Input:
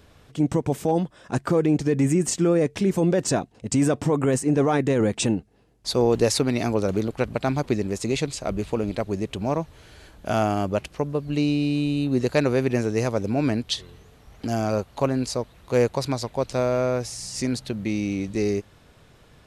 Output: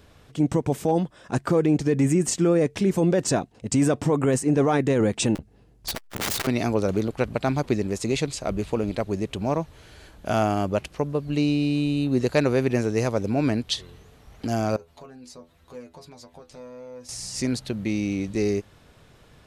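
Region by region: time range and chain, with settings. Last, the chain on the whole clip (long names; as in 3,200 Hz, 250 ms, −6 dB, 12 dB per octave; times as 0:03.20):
0:05.35–0:06.47: low-shelf EQ 190 Hz +9.5 dB + wrap-around overflow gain 19.5 dB + saturating transformer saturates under 330 Hz
0:14.76–0:17.09: downward compressor 3 to 1, threshold −36 dBFS + stiff-string resonator 81 Hz, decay 0.22 s, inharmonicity 0.002
whole clip: no processing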